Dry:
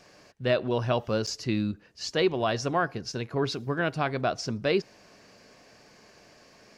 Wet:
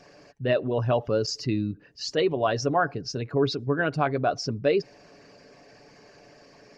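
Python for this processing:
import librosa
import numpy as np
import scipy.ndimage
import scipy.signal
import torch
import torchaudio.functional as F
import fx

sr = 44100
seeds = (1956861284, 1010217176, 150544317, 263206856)

y = fx.envelope_sharpen(x, sr, power=1.5)
y = y + 0.39 * np.pad(y, (int(7.0 * sr / 1000.0), 0))[:len(y)]
y = y * 10.0 ** (2.0 / 20.0)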